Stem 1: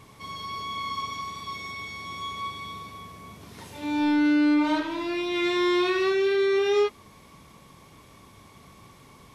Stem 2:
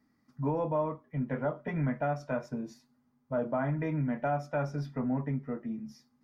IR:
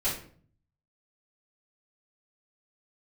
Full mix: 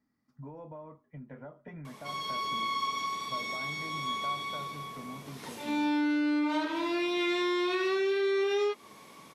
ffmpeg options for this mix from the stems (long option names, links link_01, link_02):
-filter_complex "[0:a]highpass=240,adelay=1850,volume=1dB[link_01];[1:a]acompressor=threshold=-35dB:ratio=6,volume=-7.5dB[link_02];[link_01][link_02]amix=inputs=2:normalize=0,acompressor=threshold=-27dB:ratio=4"